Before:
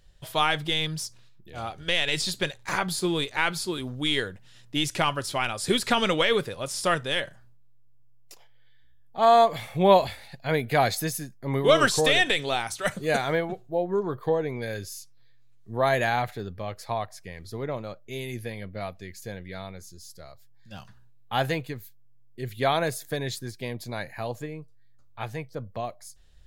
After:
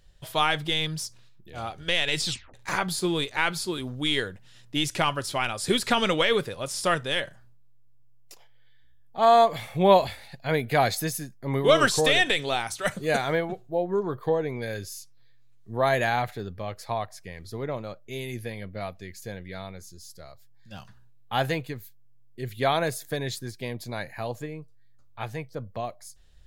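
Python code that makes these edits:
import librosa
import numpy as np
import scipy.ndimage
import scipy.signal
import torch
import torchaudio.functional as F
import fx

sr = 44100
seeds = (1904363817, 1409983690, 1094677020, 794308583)

y = fx.edit(x, sr, fx.tape_stop(start_s=2.26, length_s=0.28), tone=tone)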